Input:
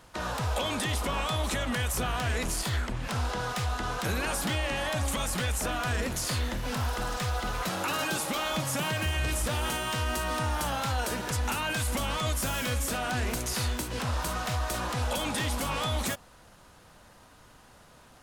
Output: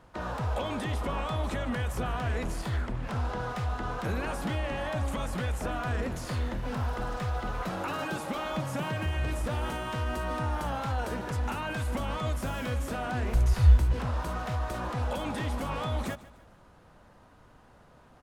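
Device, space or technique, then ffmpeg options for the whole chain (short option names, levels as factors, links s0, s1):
through cloth: -filter_complex "[0:a]asplit=3[s0][s1][s2];[s0]afade=t=out:st=13.32:d=0.02[s3];[s1]asubboost=boost=10.5:cutoff=75,afade=t=in:st=13.32:d=0.02,afade=t=out:st=13.92:d=0.02[s4];[s2]afade=t=in:st=13.92:d=0.02[s5];[s3][s4][s5]amix=inputs=3:normalize=0,highshelf=f=2600:g=-15,aecho=1:1:149|298|447:0.119|0.0475|0.019"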